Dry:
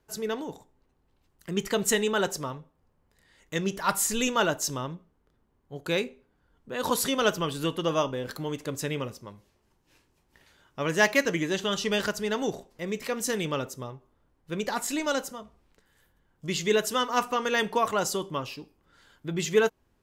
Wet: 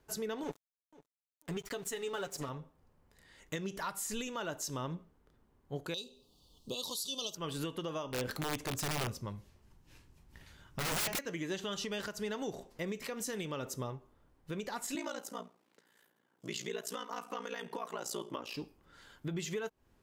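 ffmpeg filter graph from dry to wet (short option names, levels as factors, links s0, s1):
-filter_complex "[0:a]asettb=1/sr,asplit=3[s0][s1][s2];[s0]atrim=end=0.434[s3];[s1]atrim=start=0.43:end=2.49,asetpts=PTS-STARTPTS,afade=t=in:d=0.004:c=qsin,afade=t=out:st=2.056:d=0.004:c=qsin,aecho=1:1:7.1:0.63,atrim=end_sample=90846,aeval=exprs='sgn(val(0))*max(abs(val(0))-0.00944,0)':c=same,aecho=1:1:494|988:0.0708|0.0156,atrim=end_sample=90846[s4];[s2]atrim=start=2.486[s5];[s3][s4]acrossfade=d=0.004:c1=hsin:c2=qsin[s6];[s6][s5]acrossfade=d=0.004:c1=qsin:c2=hsin,asettb=1/sr,asplit=3[s7][s8][s9];[s7]atrim=end=5.944[s10];[s8]atrim=start=5.94:end=7.35,asetpts=PTS-STARTPTS,afade=t=in:d=0.004:c=qsin,afade=t=out:st=1.406:d=0.004:c=qsin,asuperstop=centerf=1800:order=20:qfactor=1.4,highshelf=f=2800:t=q:w=3:g=13.5[s11];[s9]atrim=start=7.346[s12];[s10][s11]acrossfade=d=0.004:c1=hsin:c2=qsin[s13];[s13][s12]acrossfade=d=0.004:c1=qsin:c2=hsin,asettb=1/sr,asplit=3[s14][s15][s16];[s14]atrim=end=8.104[s17];[s15]atrim=start=8.1:end=11.19,asetpts=PTS-STARTPTS,afade=t=in:d=0.004:c=qsin,afade=t=out:st=3.086:d=0.004:c=qsin,asubboost=boost=4.5:cutoff=220,aeval=exprs='(mod(17.8*val(0)+1,2)-1)/17.8':c=same[s18];[s16]atrim=start=11.186[s19];[s17][s18]acrossfade=d=0.004:c1=hsin:c2=qsin[s20];[s20][s19]acrossfade=d=0.004:c1=qsin:c2=hsin,asettb=1/sr,asplit=3[s21][s22][s23];[s21]atrim=end=14.954[s24];[s22]atrim=start=14.95:end=18.55,asetpts=PTS-STARTPTS,afade=t=in:d=0.004:c=qsin,afade=t=out:st=3.596:d=0.004:c=qsin,highpass=f=200:w=0.5412,highpass=f=200:w=1.3066,aeval=exprs='val(0)*sin(2*PI*29*n/s)':c=same[s25];[s23]atrim=start=18.546[s26];[s24][s25]acrossfade=d=0.004:c1=hsin:c2=qsin[s27];[s27][s26]acrossfade=d=0.004:c1=qsin:c2=hsin,acompressor=threshold=0.0251:ratio=6,alimiter=level_in=1.78:limit=0.0631:level=0:latency=1:release=220,volume=0.562,volume=1.12"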